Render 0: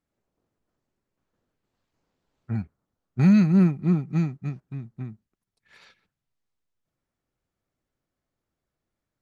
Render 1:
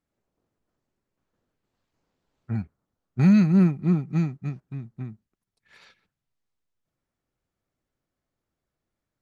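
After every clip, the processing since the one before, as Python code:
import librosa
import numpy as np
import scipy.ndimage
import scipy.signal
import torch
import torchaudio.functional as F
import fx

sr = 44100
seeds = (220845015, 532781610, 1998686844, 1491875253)

y = x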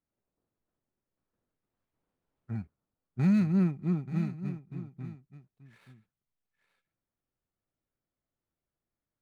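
y = scipy.ndimage.median_filter(x, 9, mode='constant')
y = y + 10.0 ** (-13.5 / 20.0) * np.pad(y, (int(881 * sr / 1000.0), 0))[:len(y)]
y = y * librosa.db_to_amplitude(-7.5)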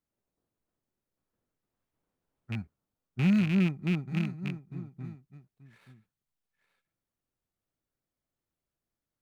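y = fx.rattle_buzz(x, sr, strikes_db=-29.0, level_db=-26.0)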